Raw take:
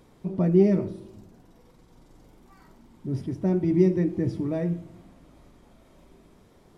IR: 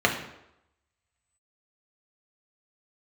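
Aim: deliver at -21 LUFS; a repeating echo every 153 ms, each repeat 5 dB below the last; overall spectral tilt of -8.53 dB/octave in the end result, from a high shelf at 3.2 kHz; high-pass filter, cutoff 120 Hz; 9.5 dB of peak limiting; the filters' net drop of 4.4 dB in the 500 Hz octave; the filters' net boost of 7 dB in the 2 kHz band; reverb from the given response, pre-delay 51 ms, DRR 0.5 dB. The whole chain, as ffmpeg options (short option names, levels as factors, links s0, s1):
-filter_complex "[0:a]highpass=120,equalizer=f=500:t=o:g=-7.5,equalizer=f=2000:t=o:g=6.5,highshelf=f=3200:g=5.5,alimiter=limit=0.1:level=0:latency=1,aecho=1:1:153|306|459|612|765|918|1071:0.562|0.315|0.176|0.0988|0.0553|0.031|0.0173,asplit=2[s0][s1];[1:a]atrim=start_sample=2205,adelay=51[s2];[s1][s2]afir=irnorm=-1:irlink=0,volume=0.141[s3];[s0][s3]amix=inputs=2:normalize=0,volume=1.68"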